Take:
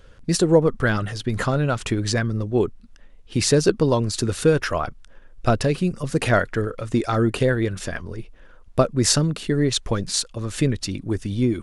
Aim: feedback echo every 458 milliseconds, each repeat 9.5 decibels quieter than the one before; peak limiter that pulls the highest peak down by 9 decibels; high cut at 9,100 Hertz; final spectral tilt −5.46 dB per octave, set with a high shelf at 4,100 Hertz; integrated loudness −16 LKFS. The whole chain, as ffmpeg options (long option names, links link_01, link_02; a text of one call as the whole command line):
ffmpeg -i in.wav -af "lowpass=9100,highshelf=frequency=4100:gain=-3.5,alimiter=limit=-12.5dB:level=0:latency=1,aecho=1:1:458|916|1374|1832:0.335|0.111|0.0365|0.012,volume=8dB" out.wav